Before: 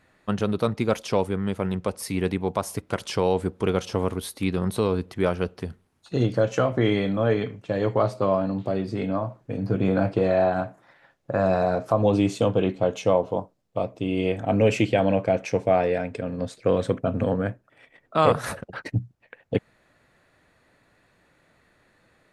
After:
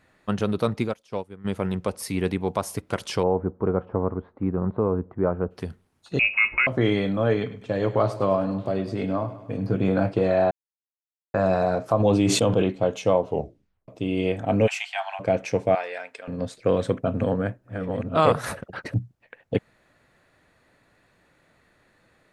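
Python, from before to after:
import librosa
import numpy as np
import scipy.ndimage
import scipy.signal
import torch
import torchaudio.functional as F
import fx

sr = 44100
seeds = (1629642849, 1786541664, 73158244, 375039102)

y = fx.upward_expand(x, sr, threshold_db=-30.0, expansion=2.5, at=(0.87, 1.44), fade=0.02)
y = fx.lowpass(y, sr, hz=1300.0, slope=24, at=(3.22, 5.5), fade=0.02)
y = fx.freq_invert(y, sr, carrier_hz=2700, at=(6.19, 6.67))
y = fx.echo_feedback(y, sr, ms=102, feedback_pct=57, wet_db=-15.0, at=(7.41, 9.76))
y = fx.sustainer(y, sr, db_per_s=33.0, at=(11.99, 12.62), fade=0.02)
y = fx.steep_highpass(y, sr, hz=710.0, slope=96, at=(14.66, 15.19), fade=0.02)
y = fx.highpass(y, sr, hz=960.0, slope=12, at=(15.75, 16.28))
y = fx.reverse_delay(y, sr, ms=564, wet_db=-4.5, at=(17.05, 18.94))
y = fx.edit(y, sr, fx.silence(start_s=10.51, length_s=0.83),
    fx.tape_stop(start_s=13.28, length_s=0.6), tone=tone)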